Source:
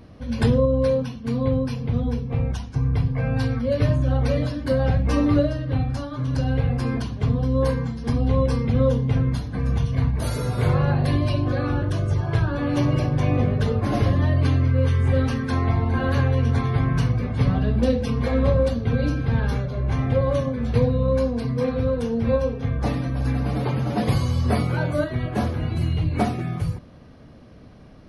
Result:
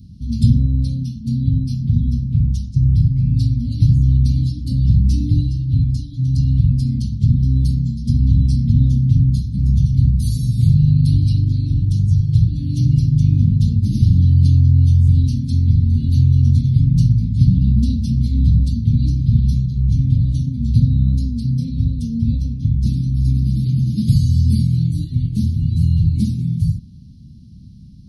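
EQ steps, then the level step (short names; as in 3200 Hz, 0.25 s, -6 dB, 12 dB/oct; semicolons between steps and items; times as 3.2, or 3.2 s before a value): HPF 40 Hz; elliptic band-stop 200–4200 Hz, stop band 70 dB; low shelf 450 Hz +6.5 dB; +3.0 dB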